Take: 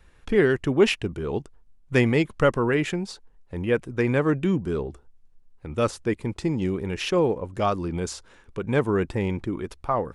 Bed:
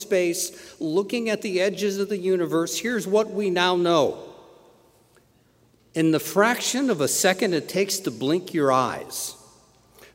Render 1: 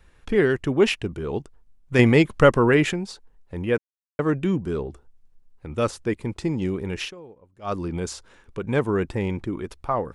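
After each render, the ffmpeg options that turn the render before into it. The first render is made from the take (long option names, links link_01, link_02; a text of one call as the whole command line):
ffmpeg -i in.wav -filter_complex "[0:a]asplit=7[link_01][link_02][link_03][link_04][link_05][link_06][link_07];[link_01]atrim=end=1.992[link_08];[link_02]atrim=start=1.988:end=2.932,asetpts=PTS-STARTPTS,volume=5dB[link_09];[link_03]atrim=start=2.928:end=3.78,asetpts=PTS-STARTPTS,afade=type=out:start_time=0.848:duration=0.004:curve=hsin[link_10];[link_04]atrim=start=3.78:end=4.19,asetpts=PTS-STARTPTS,volume=0[link_11];[link_05]atrim=start=4.19:end=7.16,asetpts=PTS-STARTPTS,afade=type=in:duration=0.004:curve=hsin,afade=type=out:start_time=2.85:duration=0.12:curve=qua:silence=0.0794328[link_12];[link_06]atrim=start=7.16:end=7.6,asetpts=PTS-STARTPTS,volume=-22dB[link_13];[link_07]atrim=start=7.6,asetpts=PTS-STARTPTS,afade=type=in:duration=0.12:curve=qua:silence=0.0794328[link_14];[link_08][link_09]acrossfade=duration=0.004:curve1=hsin:curve2=hsin[link_15];[link_10][link_11][link_12][link_13][link_14]concat=n=5:v=0:a=1[link_16];[link_15][link_16]acrossfade=duration=0.004:curve1=hsin:curve2=hsin" out.wav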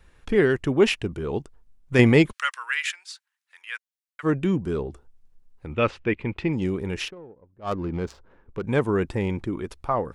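ffmpeg -i in.wav -filter_complex "[0:a]asplit=3[link_01][link_02][link_03];[link_01]afade=type=out:start_time=2.31:duration=0.02[link_04];[link_02]highpass=frequency=1500:width=0.5412,highpass=frequency=1500:width=1.3066,afade=type=in:start_time=2.31:duration=0.02,afade=type=out:start_time=4.23:duration=0.02[link_05];[link_03]afade=type=in:start_time=4.23:duration=0.02[link_06];[link_04][link_05][link_06]amix=inputs=3:normalize=0,asettb=1/sr,asplit=3[link_07][link_08][link_09];[link_07]atrim=end=5.744[link_10];[link_08]atrim=start=5.74:end=6.53,asetpts=PTS-STARTPTS,afade=type=in:duration=0.004:curve=qsin,afade=type=out:start_time=0.786:duration=0.004:curve=qsin,lowpass=frequency=2600:width_type=q:width=2.8[link_11];[link_09]atrim=start=6.526[link_12];[link_10][link_11]acrossfade=duration=0.004:curve1=hsin:curve2=qsin[link_13];[link_13][link_12]acrossfade=duration=0.004:curve1=qsin:curve2=hsin,asettb=1/sr,asplit=3[link_14][link_15][link_16];[link_14]atrim=end=7.084[link_17];[link_15]atrim=start=7.08:end=8.64,asetpts=PTS-STARTPTS,afade=type=in:duration=0.004:curve=qsin,afade=type=out:start_time=1.556:duration=0.004:curve=qsin,adynamicsmooth=sensitivity=4.5:basefreq=1100[link_18];[link_16]atrim=start=8.636[link_19];[link_17][link_18]acrossfade=duration=0.004:curve1=hsin:curve2=qsin[link_20];[link_20][link_19]acrossfade=duration=0.004:curve1=qsin:curve2=hsin" out.wav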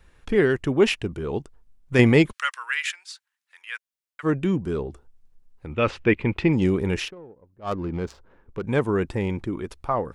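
ffmpeg -i in.wav -filter_complex "[0:a]asplit=3[link_01][link_02][link_03];[link_01]atrim=end=5.872[link_04];[link_02]atrim=start=5.868:end=7.002,asetpts=PTS-STARTPTS,volume=5dB[link_05];[link_03]atrim=start=6.998[link_06];[link_04][link_05]acrossfade=duration=0.004:curve1=hsin:curve2=hsin[link_07];[link_07][link_06]acrossfade=duration=0.004:curve1=hsin:curve2=hsin" out.wav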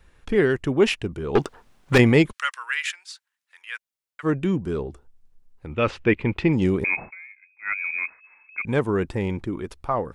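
ffmpeg -i in.wav -filter_complex "[0:a]asettb=1/sr,asplit=3[link_01][link_02][link_03];[link_01]atrim=end=1.354[link_04];[link_02]atrim=start=1.35:end=1.98,asetpts=PTS-STARTPTS,afade=type=in:duration=0.004:curve=qsin,afade=type=out:start_time=0.626:duration=0.004:curve=qsin,asplit=2[link_05][link_06];[link_06]highpass=frequency=720:poles=1,volume=31dB,asoftclip=type=tanh:threshold=-7dB[link_07];[link_05][link_07]amix=inputs=2:normalize=0,lowpass=frequency=2800:poles=1,volume=-6dB[link_08];[link_03]atrim=start=1.976[link_09];[link_04][link_08]acrossfade=duration=0.004:curve1=hsin:curve2=qsin[link_10];[link_10][link_09]acrossfade=duration=0.004:curve1=qsin:curve2=hsin,asettb=1/sr,asplit=3[link_11][link_12][link_13];[link_11]atrim=end=6.844[link_14];[link_12]atrim=start=6.84:end=8.65,asetpts=PTS-STARTPTS,afade=type=in:duration=0.004:curve=qsin,afade=type=out:start_time=1.806:duration=0.004:curve=qsin,lowpass=frequency=2200:width_type=q:width=0.5098,lowpass=frequency=2200:width_type=q:width=0.6013,lowpass=frequency=2200:width_type=q:width=0.9,lowpass=frequency=2200:width_type=q:width=2.563,afreqshift=-2600[link_15];[link_13]atrim=start=8.646[link_16];[link_14][link_15]acrossfade=duration=0.004:curve1=hsin:curve2=qsin[link_17];[link_17][link_16]acrossfade=duration=0.004:curve1=qsin:curve2=hsin" out.wav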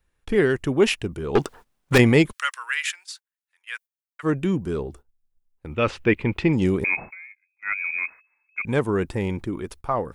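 ffmpeg -i in.wav -af "agate=range=-16dB:threshold=-44dB:ratio=16:detection=peak,highshelf=frequency=9300:gain=11.5" out.wav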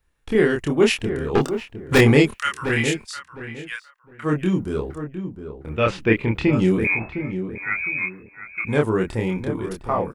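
ffmpeg -i in.wav -filter_complex "[0:a]asplit=2[link_01][link_02];[link_02]adelay=27,volume=-2.5dB[link_03];[link_01][link_03]amix=inputs=2:normalize=0,asplit=2[link_04][link_05];[link_05]adelay=709,lowpass=frequency=1400:poles=1,volume=-9dB,asplit=2[link_06][link_07];[link_07]adelay=709,lowpass=frequency=1400:poles=1,volume=0.24,asplit=2[link_08][link_09];[link_09]adelay=709,lowpass=frequency=1400:poles=1,volume=0.24[link_10];[link_06][link_08][link_10]amix=inputs=3:normalize=0[link_11];[link_04][link_11]amix=inputs=2:normalize=0" out.wav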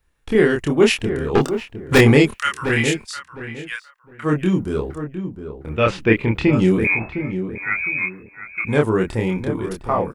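ffmpeg -i in.wav -af "volume=2.5dB,alimiter=limit=-1dB:level=0:latency=1" out.wav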